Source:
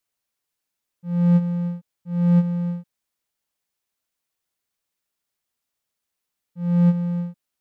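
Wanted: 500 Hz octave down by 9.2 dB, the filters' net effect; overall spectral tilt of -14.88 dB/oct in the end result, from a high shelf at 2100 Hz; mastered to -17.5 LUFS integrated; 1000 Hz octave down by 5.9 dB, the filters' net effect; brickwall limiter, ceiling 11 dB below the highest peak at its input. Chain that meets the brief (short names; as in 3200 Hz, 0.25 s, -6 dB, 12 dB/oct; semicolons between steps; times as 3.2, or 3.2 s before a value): bell 500 Hz -8.5 dB; bell 1000 Hz -6.5 dB; high shelf 2100 Hz +9 dB; gain +11 dB; limiter -10 dBFS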